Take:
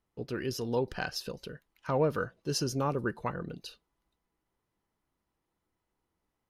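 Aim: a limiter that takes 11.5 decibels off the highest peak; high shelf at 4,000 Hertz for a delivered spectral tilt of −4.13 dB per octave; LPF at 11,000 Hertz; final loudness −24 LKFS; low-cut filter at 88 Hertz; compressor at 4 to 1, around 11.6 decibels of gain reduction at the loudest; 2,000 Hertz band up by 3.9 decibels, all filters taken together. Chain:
high-pass filter 88 Hz
low-pass filter 11,000 Hz
parametric band 2,000 Hz +4.5 dB
high-shelf EQ 4,000 Hz +6.5 dB
downward compressor 4 to 1, threshold −37 dBFS
level +20.5 dB
brickwall limiter −13 dBFS

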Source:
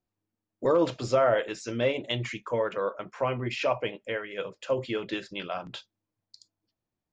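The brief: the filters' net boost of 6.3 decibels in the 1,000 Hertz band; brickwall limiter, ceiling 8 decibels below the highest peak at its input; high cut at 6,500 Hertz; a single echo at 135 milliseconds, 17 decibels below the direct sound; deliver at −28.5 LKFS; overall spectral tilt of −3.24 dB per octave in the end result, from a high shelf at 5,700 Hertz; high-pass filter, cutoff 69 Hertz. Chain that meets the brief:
high-pass filter 69 Hz
low-pass filter 6,500 Hz
parametric band 1,000 Hz +8 dB
high-shelf EQ 5,700 Hz +7.5 dB
brickwall limiter −16 dBFS
single-tap delay 135 ms −17 dB
level +1 dB

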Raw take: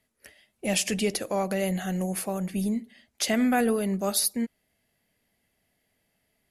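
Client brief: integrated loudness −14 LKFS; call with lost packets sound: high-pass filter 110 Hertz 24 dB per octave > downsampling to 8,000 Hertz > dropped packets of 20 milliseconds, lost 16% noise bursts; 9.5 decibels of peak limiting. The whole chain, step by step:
brickwall limiter −22 dBFS
high-pass filter 110 Hz 24 dB per octave
downsampling to 8,000 Hz
dropped packets of 20 ms, lost 16% noise bursts
level +17.5 dB

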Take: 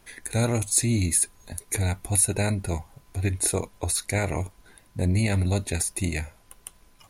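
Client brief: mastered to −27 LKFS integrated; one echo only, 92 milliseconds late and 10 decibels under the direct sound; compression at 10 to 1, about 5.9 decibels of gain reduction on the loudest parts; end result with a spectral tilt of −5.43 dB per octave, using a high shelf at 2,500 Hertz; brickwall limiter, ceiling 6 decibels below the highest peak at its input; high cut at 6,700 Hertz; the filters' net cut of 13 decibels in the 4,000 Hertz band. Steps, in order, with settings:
low-pass filter 6,700 Hz
high-shelf EQ 2,500 Hz −7.5 dB
parametric band 4,000 Hz −8 dB
downward compressor 10 to 1, threshold −25 dBFS
brickwall limiter −22.5 dBFS
single-tap delay 92 ms −10 dB
level +7 dB

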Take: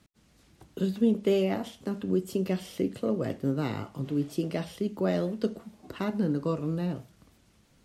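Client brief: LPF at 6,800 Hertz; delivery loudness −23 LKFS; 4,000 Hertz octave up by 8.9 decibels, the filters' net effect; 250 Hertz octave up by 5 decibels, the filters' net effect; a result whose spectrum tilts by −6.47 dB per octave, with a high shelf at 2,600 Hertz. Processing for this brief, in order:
low-pass filter 6,800 Hz
parametric band 250 Hz +6.5 dB
high-shelf EQ 2,600 Hz +4 dB
parametric band 4,000 Hz +9 dB
level +3 dB

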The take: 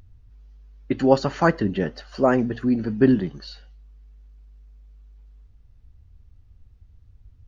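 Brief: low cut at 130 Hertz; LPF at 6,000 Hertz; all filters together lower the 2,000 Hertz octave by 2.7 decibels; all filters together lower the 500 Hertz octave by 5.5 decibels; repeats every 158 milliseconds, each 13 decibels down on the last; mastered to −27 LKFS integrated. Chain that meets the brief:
high-pass filter 130 Hz
low-pass filter 6,000 Hz
parametric band 500 Hz −7 dB
parametric band 2,000 Hz −3 dB
repeating echo 158 ms, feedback 22%, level −13 dB
level −2.5 dB

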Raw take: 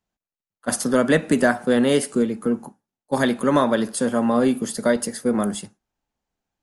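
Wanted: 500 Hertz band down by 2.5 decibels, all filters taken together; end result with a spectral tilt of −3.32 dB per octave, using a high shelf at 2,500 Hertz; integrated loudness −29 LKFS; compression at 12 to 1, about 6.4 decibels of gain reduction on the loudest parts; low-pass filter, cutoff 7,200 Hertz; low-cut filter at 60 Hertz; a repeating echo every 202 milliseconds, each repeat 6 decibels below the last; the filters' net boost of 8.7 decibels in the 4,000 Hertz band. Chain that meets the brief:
high-pass filter 60 Hz
low-pass filter 7,200 Hz
parametric band 500 Hz −3.5 dB
high-shelf EQ 2,500 Hz +8.5 dB
parametric band 4,000 Hz +4 dB
downward compressor 12 to 1, threshold −19 dBFS
repeating echo 202 ms, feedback 50%, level −6 dB
level −5 dB

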